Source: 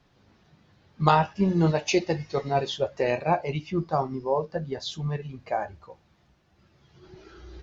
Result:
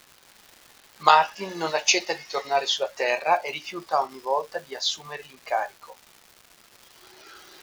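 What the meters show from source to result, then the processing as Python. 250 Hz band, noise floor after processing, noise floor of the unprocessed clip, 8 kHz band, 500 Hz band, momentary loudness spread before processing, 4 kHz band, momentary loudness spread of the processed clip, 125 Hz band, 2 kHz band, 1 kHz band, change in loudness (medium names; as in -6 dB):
-11.5 dB, -56 dBFS, -64 dBFS, no reading, -1.0 dB, 10 LU, +9.0 dB, 15 LU, -21.0 dB, +7.0 dB, +4.0 dB, +2.0 dB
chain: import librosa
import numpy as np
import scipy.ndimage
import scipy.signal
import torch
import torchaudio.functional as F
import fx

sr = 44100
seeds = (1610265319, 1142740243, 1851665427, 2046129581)

y = scipy.signal.sosfilt(scipy.signal.butter(2, 760.0, 'highpass', fs=sr, output='sos'), x)
y = fx.high_shelf(y, sr, hz=4700.0, db=7.5)
y = fx.dmg_crackle(y, sr, seeds[0], per_s=460.0, level_db=-44.0)
y = F.gain(torch.from_numpy(y), 6.0).numpy()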